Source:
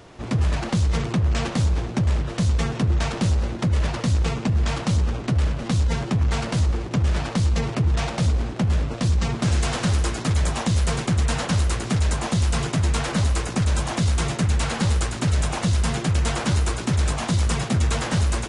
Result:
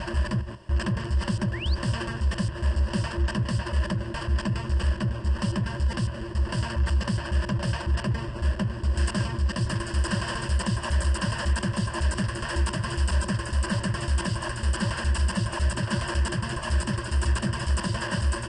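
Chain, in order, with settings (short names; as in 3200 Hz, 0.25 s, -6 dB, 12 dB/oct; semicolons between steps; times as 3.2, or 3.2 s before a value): slices in reverse order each 0.138 s, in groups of 5; dynamic EQ 1400 Hz, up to +6 dB, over -48 dBFS, Q 1.9; painted sound rise, 1.53–1.75, 1700–4900 Hz -31 dBFS; ripple EQ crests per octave 1.3, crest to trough 14 dB; gain -7.5 dB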